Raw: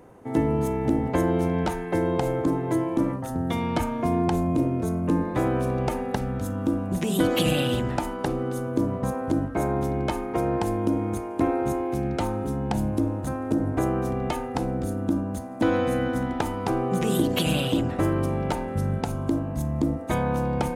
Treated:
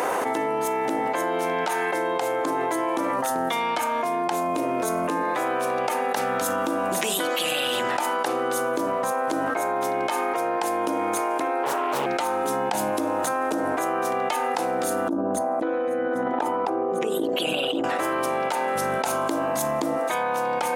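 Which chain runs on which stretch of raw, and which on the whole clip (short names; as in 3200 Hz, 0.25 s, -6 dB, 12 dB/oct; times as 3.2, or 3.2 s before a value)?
11.63–12.06 comb 6.8 ms, depth 99% + Doppler distortion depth 0.86 ms
15.08–17.84 formant sharpening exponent 1.5 + dynamic EQ 340 Hz, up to +5 dB, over -32 dBFS, Q 0.87 + negative-ratio compressor -30 dBFS
whole clip: HPF 710 Hz 12 dB/oct; fast leveller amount 100%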